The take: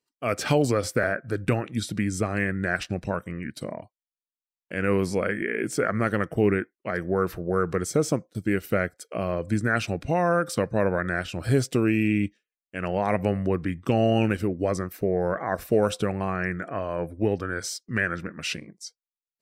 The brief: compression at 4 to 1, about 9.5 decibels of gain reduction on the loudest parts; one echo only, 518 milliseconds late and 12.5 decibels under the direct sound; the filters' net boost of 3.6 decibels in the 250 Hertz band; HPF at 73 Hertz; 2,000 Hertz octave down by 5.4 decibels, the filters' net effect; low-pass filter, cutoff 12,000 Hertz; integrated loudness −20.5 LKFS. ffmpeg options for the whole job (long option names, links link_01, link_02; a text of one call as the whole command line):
ffmpeg -i in.wav -af "highpass=73,lowpass=12000,equalizer=frequency=250:width_type=o:gain=5,equalizer=frequency=2000:width_type=o:gain=-7.5,acompressor=threshold=-26dB:ratio=4,aecho=1:1:518:0.237,volume=11dB" out.wav